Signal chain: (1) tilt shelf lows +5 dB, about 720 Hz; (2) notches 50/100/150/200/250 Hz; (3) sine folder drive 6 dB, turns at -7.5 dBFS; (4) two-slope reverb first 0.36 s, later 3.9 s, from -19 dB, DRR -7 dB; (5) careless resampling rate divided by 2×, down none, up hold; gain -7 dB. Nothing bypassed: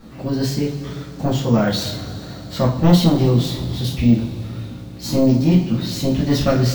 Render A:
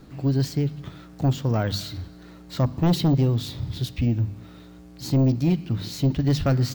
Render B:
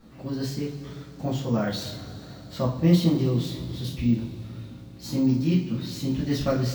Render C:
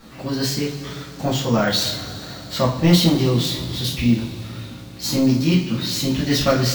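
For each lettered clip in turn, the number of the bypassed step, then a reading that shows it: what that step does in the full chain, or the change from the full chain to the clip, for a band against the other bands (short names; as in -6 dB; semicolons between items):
4, loudness change -5.5 LU; 3, distortion -12 dB; 1, loudness change -1.5 LU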